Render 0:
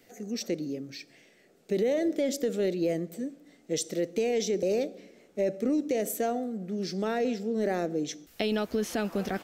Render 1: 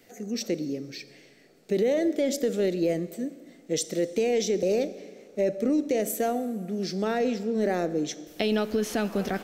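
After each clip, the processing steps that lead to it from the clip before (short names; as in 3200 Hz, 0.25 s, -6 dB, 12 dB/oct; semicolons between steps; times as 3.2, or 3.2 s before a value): Schroeder reverb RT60 2 s, combs from 29 ms, DRR 16 dB; gain +2.5 dB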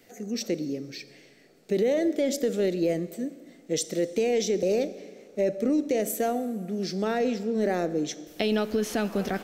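nothing audible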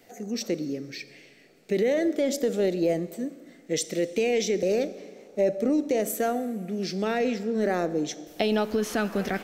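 LFO bell 0.36 Hz 760–2600 Hz +6 dB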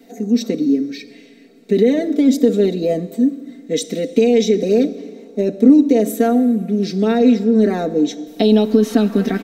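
comb 4.4 ms, depth 85%; small resonant body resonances 280/3800 Hz, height 15 dB, ringing for 25 ms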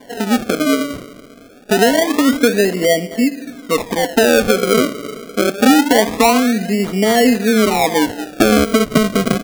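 bell 710 Hz +10.5 dB 0.84 oct; in parallel at +2.5 dB: compressor, threshold -19 dBFS, peak gain reduction 14 dB; on the sum: decimation with a swept rate 34×, swing 100% 0.25 Hz; gain -4.5 dB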